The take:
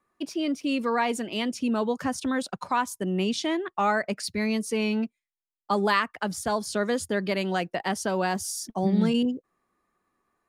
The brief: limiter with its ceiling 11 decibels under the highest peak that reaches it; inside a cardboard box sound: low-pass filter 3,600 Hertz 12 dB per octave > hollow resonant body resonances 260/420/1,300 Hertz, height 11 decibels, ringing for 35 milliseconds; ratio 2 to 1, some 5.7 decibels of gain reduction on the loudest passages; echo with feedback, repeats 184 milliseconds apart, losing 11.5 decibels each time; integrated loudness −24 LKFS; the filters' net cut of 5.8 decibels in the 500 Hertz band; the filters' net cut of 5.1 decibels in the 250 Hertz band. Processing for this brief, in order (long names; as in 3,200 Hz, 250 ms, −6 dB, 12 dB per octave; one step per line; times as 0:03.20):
parametric band 250 Hz −5 dB
parametric band 500 Hz −6 dB
downward compressor 2 to 1, threshold −32 dBFS
brickwall limiter −28 dBFS
low-pass filter 3,600 Hz 12 dB per octave
repeating echo 184 ms, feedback 27%, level −11.5 dB
hollow resonant body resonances 260/420/1,300 Hz, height 11 dB, ringing for 35 ms
level +8 dB